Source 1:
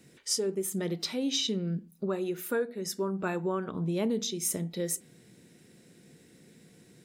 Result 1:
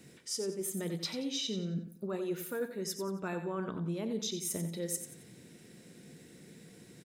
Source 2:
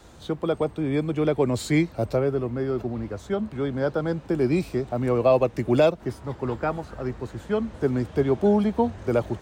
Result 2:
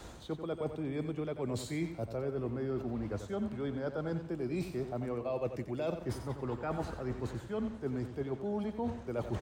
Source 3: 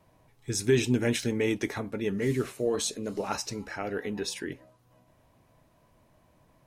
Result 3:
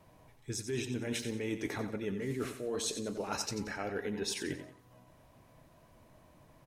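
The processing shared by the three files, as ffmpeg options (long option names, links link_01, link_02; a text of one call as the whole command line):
ffmpeg -i in.wav -af "areverse,acompressor=threshold=-35dB:ratio=10,areverse,aecho=1:1:90|180|270|360:0.335|0.121|0.0434|0.0156,volume=2dB" out.wav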